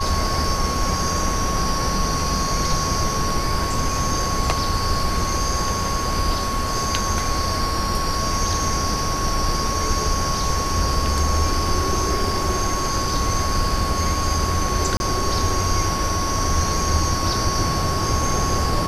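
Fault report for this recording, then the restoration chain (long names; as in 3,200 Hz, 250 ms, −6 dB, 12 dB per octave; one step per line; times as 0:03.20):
whistle 1,100 Hz −25 dBFS
0:14.97–0:15.00: drop-out 31 ms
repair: notch filter 1,100 Hz, Q 30
repair the gap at 0:14.97, 31 ms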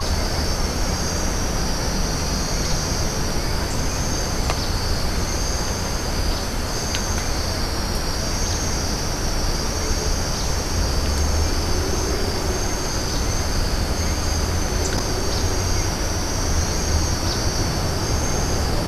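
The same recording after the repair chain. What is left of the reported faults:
none of them is left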